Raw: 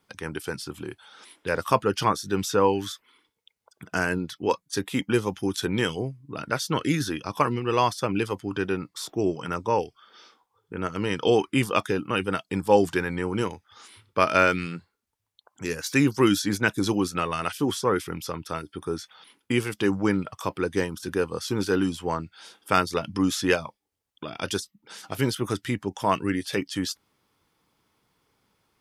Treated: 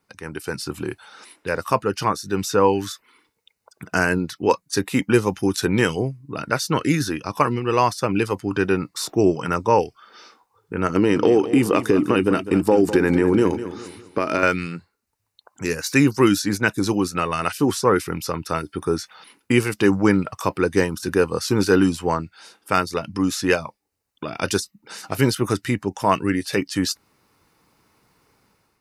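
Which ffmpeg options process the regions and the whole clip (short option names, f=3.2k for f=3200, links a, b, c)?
-filter_complex "[0:a]asettb=1/sr,asplit=3[a][b][c];[a]atrim=end=10.894[d];[b]atrim=start=10.89:end=14.43,asetpts=PTS-STARTPTS,afade=t=in:d=0.004:c=qsin,afade=t=out:st=3.536:d=0.004:c=qsin,equalizer=f=320:w=1.2:g=11,acompressor=threshold=-19dB:ratio=6:attack=3.2:release=140:knee=1:detection=peak,aecho=1:1:203|406|609|812:0.237|0.107|0.048|0.0216,atrim=end_sample=156114[e];[c]atrim=start=14.426[f];[d][e]acrossfade=d=0.004:c1=hsin:c2=qsin[g];[g][f]acrossfade=d=0.004:c1=qsin:c2=hsin,bandreject=f=3.3k:w=5.4,dynaudnorm=f=230:g=5:m=10dB,volume=-1dB"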